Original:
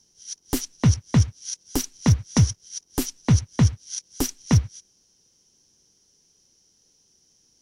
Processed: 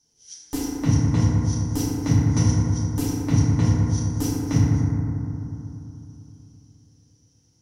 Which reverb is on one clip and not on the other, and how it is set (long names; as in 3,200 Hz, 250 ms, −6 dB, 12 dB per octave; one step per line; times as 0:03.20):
feedback delay network reverb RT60 3.1 s, low-frequency decay 1.2×, high-frequency decay 0.25×, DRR −9.5 dB
level −10.5 dB